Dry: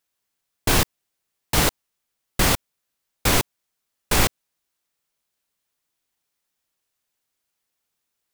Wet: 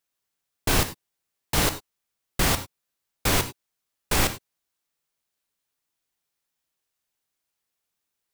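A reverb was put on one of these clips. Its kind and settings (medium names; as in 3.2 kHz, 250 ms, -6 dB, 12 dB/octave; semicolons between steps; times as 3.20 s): gated-style reverb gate 120 ms flat, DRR 9.5 dB; trim -3.5 dB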